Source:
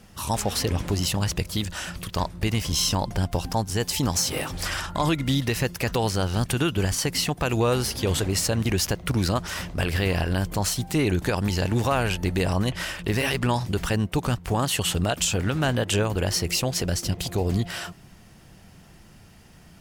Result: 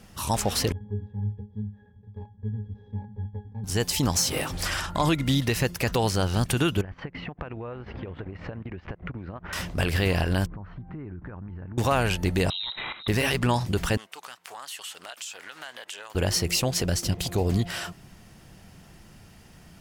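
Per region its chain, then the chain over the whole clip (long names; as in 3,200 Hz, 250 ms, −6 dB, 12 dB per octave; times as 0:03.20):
0:00.72–0:03.64: running median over 41 samples + moving average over 4 samples + resonances in every octave G#, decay 0.25 s
0:06.81–0:09.53: low-pass filter 2,200 Hz 24 dB per octave + downward compressor 8 to 1, threshold −33 dBFS + transient designer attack +4 dB, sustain −11 dB
0:10.46–0:11.78: inverse Chebyshev low-pass filter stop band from 8,000 Hz, stop band 80 dB + parametric band 610 Hz −9.5 dB 1.6 octaves + downward compressor, threshold −35 dBFS
0:12.50–0:13.08: output level in coarse steps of 11 dB + voice inversion scrambler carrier 3,900 Hz
0:13.97–0:16.15: high-pass filter 1,000 Hz + downward compressor 2.5 to 1, threshold −40 dBFS + highs frequency-modulated by the lows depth 0.19 ms
whole clip: no processing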